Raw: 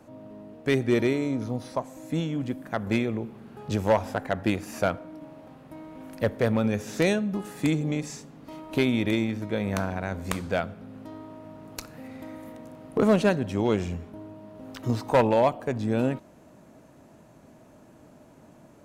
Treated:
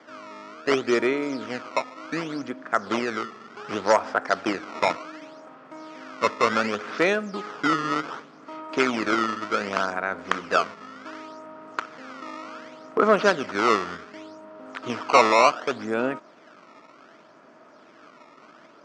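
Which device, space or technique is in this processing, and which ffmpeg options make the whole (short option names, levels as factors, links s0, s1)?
circuit-bent sampling toy: -af "acrusher=samples=16:mix=1:aa=0.000001:lfo=1:lforange=25.6:lforate=0.67,highpass=430,equalizer=f=540:t=q:w=4:g=-4,equalizer=f=810:t=q:w=4:g=-4,equalizer=f=1300:t=q:w=4:g=9,equalizer=f=2800:t=q:w=4:g=-3,equalizer=f=3900:t=q:w=4:g=-7,lowpass=f=5300:w=0.5412,lowpass=f=5300:w=1.3066,volume=2.11"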